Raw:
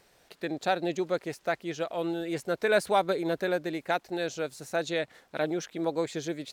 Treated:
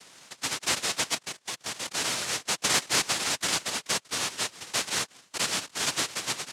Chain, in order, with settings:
0:01.14–0:01.94: output level in coarse steps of 12 dB
cochlear-implant simulation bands 1
multiband upward and downward compressor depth 40%

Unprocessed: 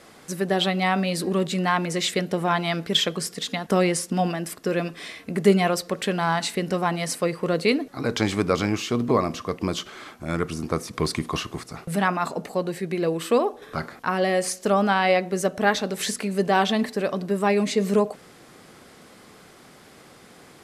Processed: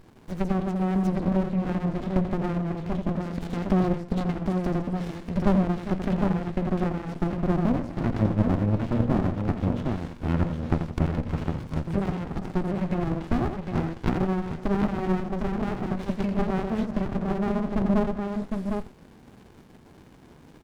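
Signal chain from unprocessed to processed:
treble cut that deepens with the level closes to 580 Hz, closed at −20 dBFS
multi-tap delay 85/160/161/401/757 ms −7.5/−15.5/−19.5/−14/−4.5 dB
windowed peak hold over 65 samples

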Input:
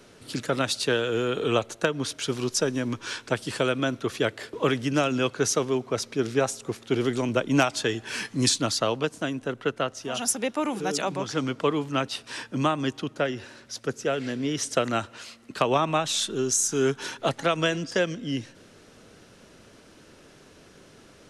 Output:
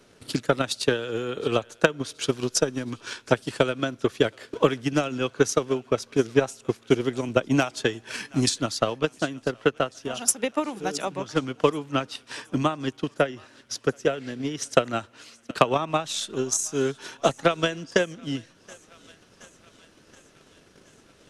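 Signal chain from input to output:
feedback echo with a high-pass in the loop 723 ms, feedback 69%, high-pass 670 Hz, level −20 dB
transient designer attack +11 dB, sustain −3 dB
level −4.5 dB

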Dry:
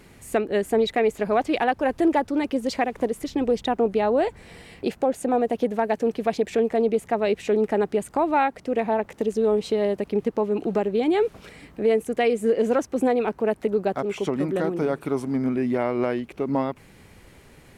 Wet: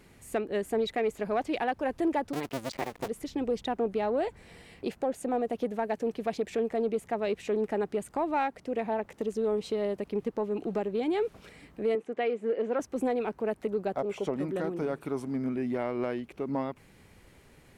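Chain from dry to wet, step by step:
0:02.33–0:03.08: sub-harmonics by changed cycles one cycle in 2, muted
0:13.93–0:14.39: drawn EQ curve 370 Hz 0 dB, 560 Hz +7 dB, 1,500 Hz −2 dB
in parallel at −10.5 dB: soft clipping −21.5 dBFS, distortion −11 dB
0:11.95–0:12.80: on the sum: band-pass filter 260–2,900 Hz
level −9 dB

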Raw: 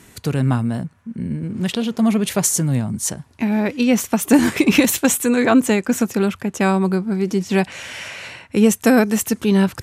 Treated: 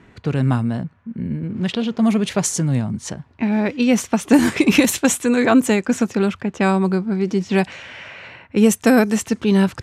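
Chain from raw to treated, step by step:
low-pass that shuts in the quiet parts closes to 2,200 Hz, open at −9.5 dBFS
0:07.74–0:08.56: downward compressor 1.5 to 1, threshold −38 dBFS, peak gain reduction 6 dB

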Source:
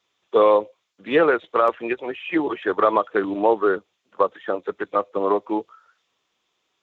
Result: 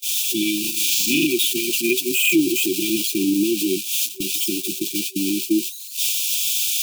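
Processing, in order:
spike at every zero crossing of −19.5 dBFS
low shelf with overshoot 120 Hz −6.5 dB, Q 1.5
0:00.60–0:01.27: flutter between parallel walls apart 6.8 metres, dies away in 1.2 s
noise gate −27 dBFS, range −35 dB
dynamic equaliser 2,500 Hz, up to +5 dB, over −33 dBFS, Q 0.83
brick-wall band-stop 380–2,300 Hz
brickwall limiter −18 dBFS, peak gain reduction 10 dB
level +9 dB

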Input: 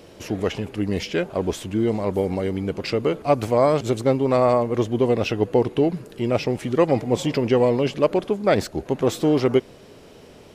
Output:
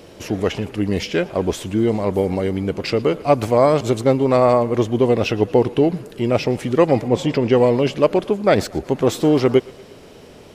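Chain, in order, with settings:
0:07.08–0:07.52: high-shelf EQ 6,000 Hz −10 dB
on a send: feedback echo with a high-pass in the loop 117 ms, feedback 60%, level −21.5 dB
on the sum: level +3.5 dB

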